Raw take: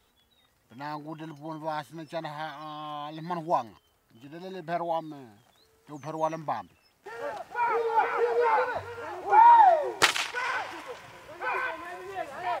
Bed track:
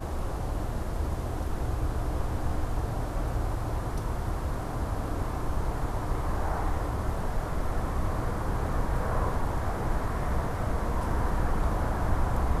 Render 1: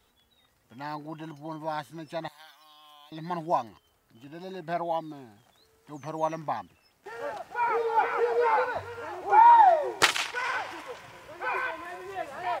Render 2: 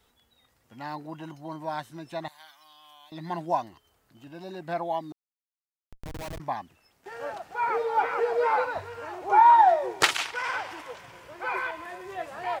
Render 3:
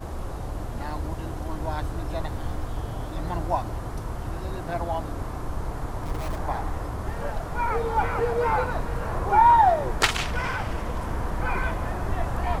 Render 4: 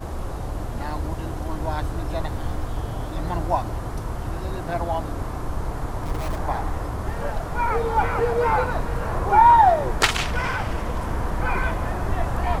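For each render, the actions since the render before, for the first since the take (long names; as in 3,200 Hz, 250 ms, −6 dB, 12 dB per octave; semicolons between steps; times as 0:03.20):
0:02.28–0:03.12: first difference
0:05.12–0:06.40: comparator with hysteresis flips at −32.5 dBFS
mix in bed track −1 dB
level +3 dB; brickwall limiter −3 dBFS, peak gain reduction 1 dB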